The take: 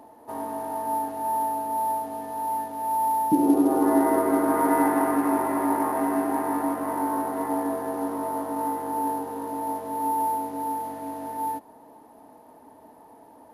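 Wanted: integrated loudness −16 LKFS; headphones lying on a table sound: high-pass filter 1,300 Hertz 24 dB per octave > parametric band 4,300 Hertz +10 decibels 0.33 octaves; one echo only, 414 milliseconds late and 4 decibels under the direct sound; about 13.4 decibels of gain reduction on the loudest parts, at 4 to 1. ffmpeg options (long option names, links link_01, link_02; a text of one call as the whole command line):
ffmpeg -i in.wav -af "acompressor=threshold=-32dB:ratio=4,highpass=frequency=1300:width=0.5412,highpass=frequency=1300:width=1.3066,equalizer=frequency=4300:width_type=o:width=0.33:gain=10,aecho=1:1:414:0.631,volume=28.5dB" out.wav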